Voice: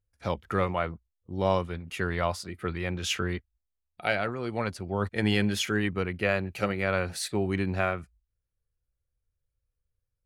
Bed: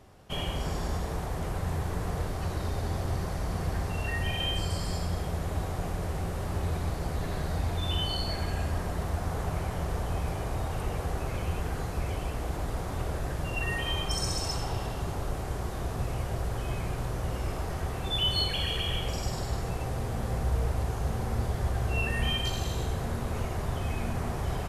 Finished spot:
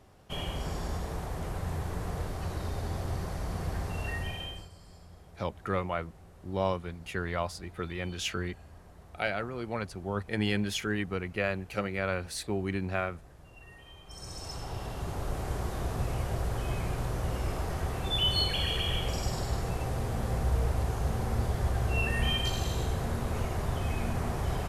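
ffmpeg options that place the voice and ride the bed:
-filter_complex "[0:a]adelay=5150,volume=-4dB[a];[1:a]volume=18dB,afade=t=out:st=4.1:d=0.6:silence=0.125893,afade=t=in:st=14.04:d=1.46:silence=0.0891251[b];[a][b]amix=inputs=2:normalize=0"

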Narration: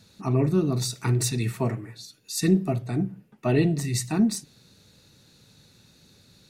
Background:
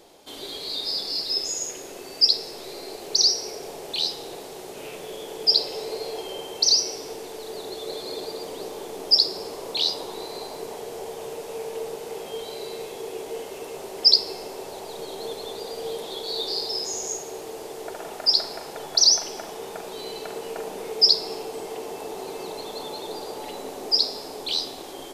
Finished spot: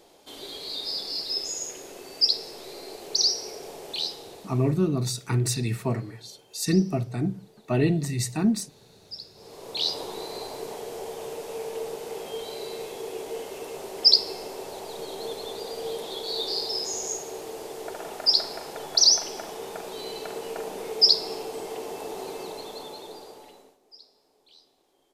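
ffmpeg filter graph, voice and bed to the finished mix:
-filter_complex "[0:a]adelay=4250,volume=-1dB[a];[1:a]volume=18dB,afade=t=out:st=3.93:d=0.99:silence=0.112202,afade=t=in:st=9.34:d=0.66:silence=0.0841395,afade=t=out:st=22.24:d=1.54:silence=0.0354813[b];[a][b]amix=inputs=2:normalize=0"

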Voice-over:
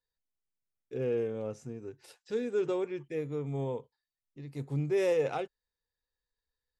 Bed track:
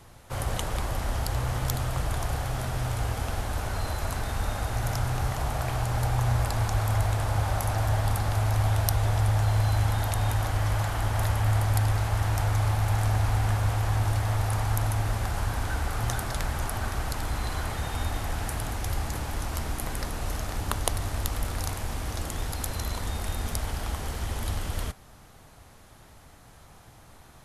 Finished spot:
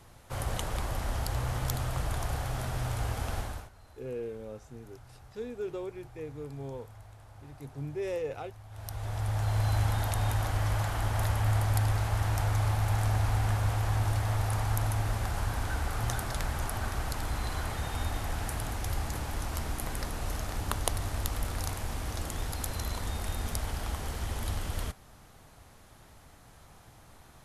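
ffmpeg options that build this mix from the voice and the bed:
-filter_complex "[0:a]adelay=3050,volume=-6dB[a];[1:a]volume=19dB,afade=t=out:st=3.38:d=0.32:silence=0.0794328,afade=t=in:st=8.69:d=1.05:silence=0.0749894[b];[a][b]amix=inputs=2:normalize=0"

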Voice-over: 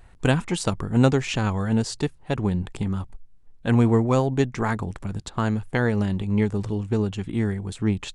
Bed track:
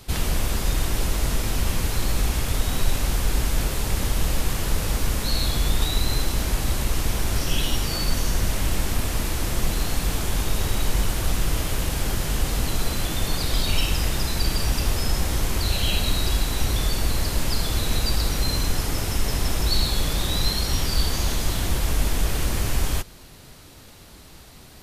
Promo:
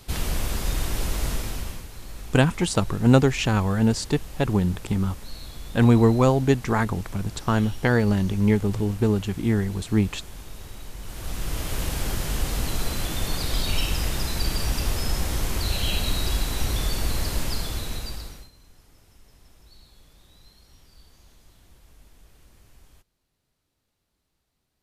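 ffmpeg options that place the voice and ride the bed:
-filter_complex "[0:a]adelay=2100,volume=2dB[a];[1:a]volume=11dB,afade=t=out:st=1.28:d=0.58:silence=0.211349,afade=t=in:st=11:d=0.83:silence=0.199526,afade=t=out:st=17.34:d=1.16:silence=0.0375837[b];[a][b]amix=inputs=2:normalize=0"

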